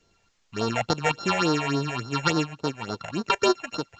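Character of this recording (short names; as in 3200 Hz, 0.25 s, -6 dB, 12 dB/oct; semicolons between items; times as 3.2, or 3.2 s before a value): a buzz of ramps at a fixed pitch in blocks of 32 samples; phasing stages 6, 3.5 Hz, lowest notch 300–2500 Hz; a quantiser's noise floor 12-bit, dither triangular; µ-law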